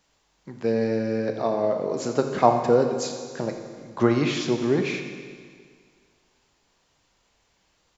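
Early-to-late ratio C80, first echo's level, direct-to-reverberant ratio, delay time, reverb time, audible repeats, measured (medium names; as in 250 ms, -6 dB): 6.5 dB, -14.0 dB, 4.5 dB, 85 ms, 1.9 s, 1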